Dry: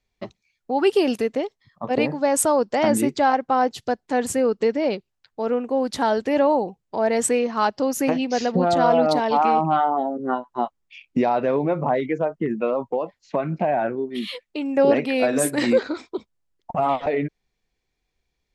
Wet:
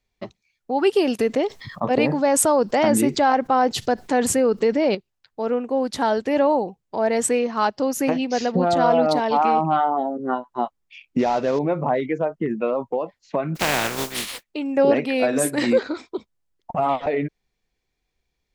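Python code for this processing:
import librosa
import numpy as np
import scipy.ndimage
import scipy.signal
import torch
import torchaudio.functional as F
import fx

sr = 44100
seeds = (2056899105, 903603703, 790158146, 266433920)

y = fx.env_flatten(x, sr, amount_pct=50, at=(1.19, 4.95))
y = fx.cvsd(y, sr, bps=32000, at=(11.19, 11.59))
y = fx.spec_flatten(y, sr, power=0.27, at=(13.55, 14.42), fade=0.02)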